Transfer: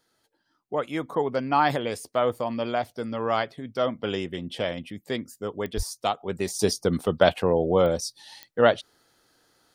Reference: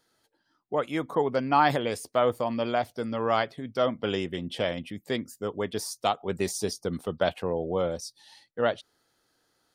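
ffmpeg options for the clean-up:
ffmpeg -i in.wav -filter_complex "[0:a]adeclick=threshold=4,asplit=3[link_01][link_02][link_03];[link_01]afade=type=out:start_time=5.76:duration=0.02[link_04];[link_02]highpass=frequency=140:width=0.5412,highpass=frequency=140:width=1.3066,afade=type=in:start_time=5.76:duration=0.02,afade=type=out:start_time=5.88:duration=0.02[link_05];[link_03]afade=type=in:start_time=5.88:duration=0.02[link_06];[link_04][link_05][link_06]amix=inputs=3:normalize=0,asetnsamples=nb_out_samples=441:pad=0,asendcmd='6.59 volume volume -7dB',volume=0dB" out.wav

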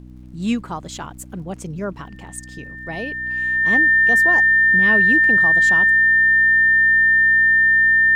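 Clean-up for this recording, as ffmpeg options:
ffmpeg -i in.wav -af "adeclick=threshold=4,bandreject=frequency=62.2:width_type=h:width=4,bandreject=frequency=124.4:width_type=h:width=4,bandreject=frequency=186.6:width_type=h:width=4,bandreject=frequency=248.8:width_type=h:width=4,bandreject=frequency=311:width_type=h:width=4,bandreject=frequency=1800:width=30,agate=range=-21dB:threshold=-30dB" out.wav

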